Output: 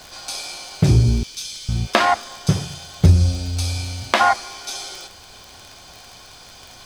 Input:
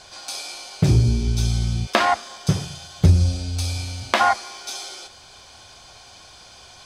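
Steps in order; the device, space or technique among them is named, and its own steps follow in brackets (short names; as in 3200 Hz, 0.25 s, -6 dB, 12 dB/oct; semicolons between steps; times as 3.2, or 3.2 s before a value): 1.23–1.69 Chebyshev high-pass 2900 Hz, order 2; vinyl LP (crackle 36/s -30 dBFS; pink noise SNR 31 dB); gain +2 dB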